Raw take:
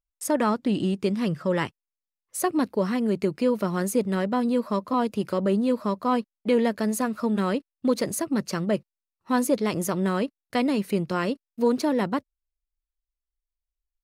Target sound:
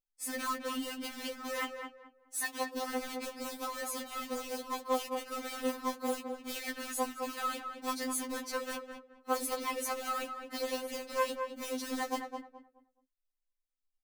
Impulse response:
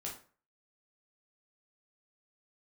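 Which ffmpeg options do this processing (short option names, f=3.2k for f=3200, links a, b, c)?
-filter_complex "[0:a]acrusher=bits=3:mode=log:mix=0:aa=0.000001,afftfilt=real='re*lt(hypot(re,im),0.398)':imag='im*lt(hypot(re,im),0.398)':win_size=1024:overlap=0.75,asplit=2[a][b];[b]adelay=212,lowpass=f=1.6k:p=1,volume=-5dB,asplit=2[c][d];[d]adelay=212,lowpass=f=1.6k:p=1,volume=0.28,asplit=2[e][f];[f]adelay=212,lowpass=f=1.6k:p=1,volume=0.28,asplit=2[g][h];[h]adelay=212,lowpass=f=1.6k:p=1,volume=0.28[i];[c][e][g][i]amix=inputs=4:normalize=0[j];[a][j]amix=inputs=2:normalize=0,afftfilt=real='re*3.46*eq(mod(b,12),0)':imag='im*3.46*eq(mod(b,12),0)':win_size=2048:overlap=0.75,volume=-3.5dB"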